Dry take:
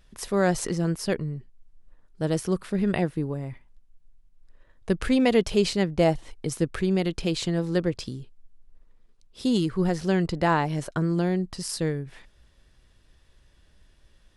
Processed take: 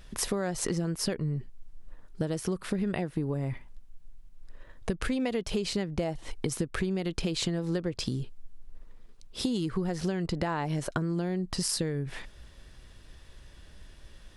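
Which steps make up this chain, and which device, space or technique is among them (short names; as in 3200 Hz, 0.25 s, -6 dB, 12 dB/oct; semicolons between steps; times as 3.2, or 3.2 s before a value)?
serial compression, peaks first (compressor, threshold -29 dBFS, peak gain reduction 13 dB; compressor 3:1, threshold -36 dBFS, peak gain reduction 7.5 dB); gain +8 dB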